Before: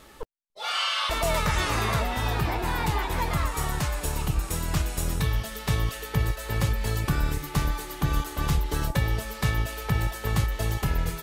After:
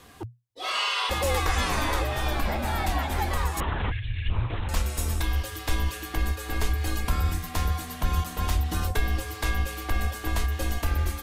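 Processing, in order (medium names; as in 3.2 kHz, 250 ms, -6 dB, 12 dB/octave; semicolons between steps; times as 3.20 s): 3.91–4.30 s: spectral selection erased 260–1700 Hz; 3.60–4.69 s: LPC vocoder at 8 kHz whisper; frequency shift -120 Hz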